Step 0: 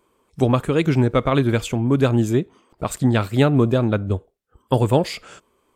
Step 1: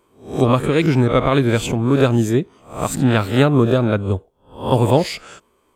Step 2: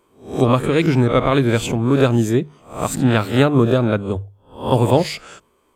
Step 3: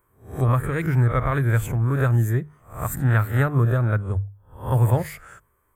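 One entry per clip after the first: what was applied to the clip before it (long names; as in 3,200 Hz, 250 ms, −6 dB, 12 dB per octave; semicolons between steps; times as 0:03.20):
peak hold with a rise ahead of every peak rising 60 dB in 0.40 s; level +1.5 dB
mains-hum notches 50/100/150 Hz
drawn EQ curve 110 Hz 0 dB, 240 Hz −17 dB, 840 Hz −12 dB, 1,800 Hz −3 dB, 2,700 Hz −21 dB, 4,700 Hz −24 dB, 13,000 Hz +2 dB; level +3 dB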